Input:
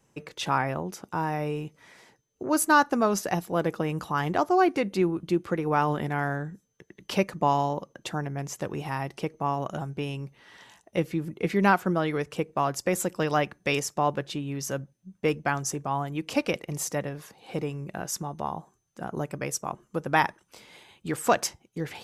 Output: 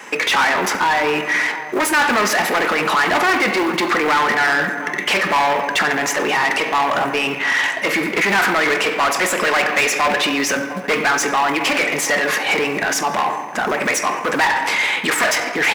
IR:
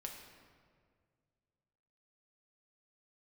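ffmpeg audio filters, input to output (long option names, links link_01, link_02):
-filter_complex "[0:a]asoftclip=type=hard:threshold=-23dB,alimiter=level_in=10.5dB:limit=-24dB:level=0:latency=1:release=48,volume=-10.5dB,equalizer=frequency=125:width_type=o:width=1:gain=-10,equalizer=frequency=250:width_type=o:width=1:gain=6,equalizer=frequency=1000:width_type=o:width=1:gain=4,equalizer=frequency=2000:width_type=o:width=1:gain=12,asplit=2[link_01][link_02];[link_02]adelay=991.3,volume=-21dB,highshelf=frequency=4000:gain=-22.3[link_03];[link_01][link_03]amix=inputs=2:normalize=0,asplit=2[link_04][link_05];[1:a]atrim=start_sample=2205[link_06];[link_05][link_06]afir=irnorm=-1:irlink=0,volume=4.5dB[link_07];[link_04][link_07]amix=inputs=2:normalize=0,acrusher=bits=7:mode=log:mix=0:aa=0.000001,asplit=2[link_08][link_09];[link_09]highpass=frequency=720:poles=1,volume=24dB,asoftclip=type=tanh:threshold=-14.5dB[link_10];[link_08][link_10]amix=inputs=2:normalize=0,lowpass=frequency=5400:poles=1,volume=-6dB,atempo=1.4,lowshelf=frequency=99:gain=-11.5,volume=6.5dB"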